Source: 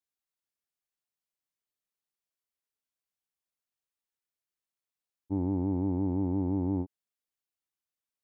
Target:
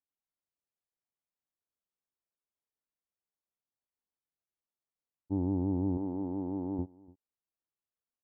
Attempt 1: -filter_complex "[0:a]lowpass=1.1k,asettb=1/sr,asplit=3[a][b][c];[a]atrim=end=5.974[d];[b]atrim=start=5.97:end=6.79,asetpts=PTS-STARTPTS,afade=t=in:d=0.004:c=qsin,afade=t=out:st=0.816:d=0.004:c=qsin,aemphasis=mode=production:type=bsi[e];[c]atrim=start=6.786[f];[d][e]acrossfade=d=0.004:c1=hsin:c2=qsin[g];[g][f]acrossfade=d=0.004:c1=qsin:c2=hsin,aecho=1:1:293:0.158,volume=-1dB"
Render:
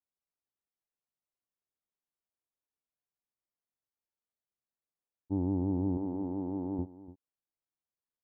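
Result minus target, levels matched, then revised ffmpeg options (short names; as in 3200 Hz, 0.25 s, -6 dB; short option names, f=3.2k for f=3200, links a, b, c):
echo-to-direct +6.5 dB
-filter_complex "[0:a]lowpass=1.1k,asettb=1/sr,asplit=3[a][b][c];[a]atrim=end=5.974[d];[b]atrim=start=5.97:end=6.79,asetpts=PTS-STARTPTS,afade=t=in:d=0.004:c=qsin,afade=t=out:st=0.816:d=0.004:c=qsin,aemphasis=mode=production:type=bsi[e];[c]atrim=start=6.786[f];[d][e]acrossfade=d=0.004:c1=hsin:c2=qsin[g];[g][f]acrossfade=d=0.004:c1=qsin:c2=hsin,aecho=1:1:293:0.075,volume=-1dB"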